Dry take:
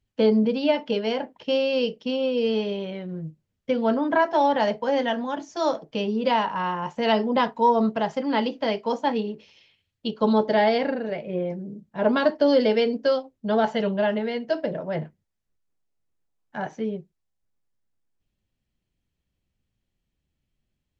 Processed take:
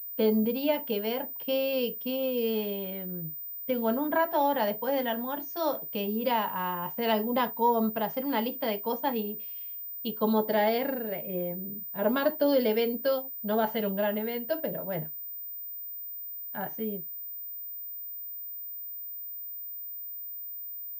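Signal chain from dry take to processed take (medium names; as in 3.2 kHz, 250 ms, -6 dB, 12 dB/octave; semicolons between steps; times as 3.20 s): class-D stage that switches slowly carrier 15 kHz; trim -5.5 dB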